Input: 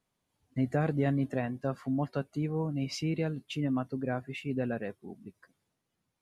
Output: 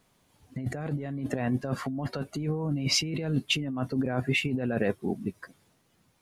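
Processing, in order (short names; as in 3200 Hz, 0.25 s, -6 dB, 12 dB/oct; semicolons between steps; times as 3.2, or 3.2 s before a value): negative-ratio compressor -38 dBFS, ratio -1; gain +8.5 dB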